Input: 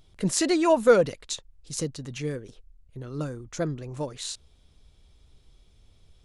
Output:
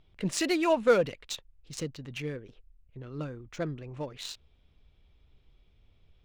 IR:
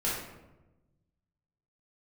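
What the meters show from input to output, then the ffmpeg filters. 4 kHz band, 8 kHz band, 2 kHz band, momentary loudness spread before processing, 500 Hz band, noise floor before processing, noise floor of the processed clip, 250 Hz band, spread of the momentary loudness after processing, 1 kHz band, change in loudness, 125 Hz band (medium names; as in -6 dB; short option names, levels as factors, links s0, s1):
-3.0 dB, -8.0 dB, -1.5 dB, 16 LU, -5.0 dB, -59 dBFS, -64 dBFS, -5.0 dB, 18 LU, -4.0 dB, -4.5 dB, -5.0 dB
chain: -af "equalizer=f=2600:w=1.4:g=7.5,adynamicsmooth=sensitivity=5.5:basefreq=3000,volume=0.562"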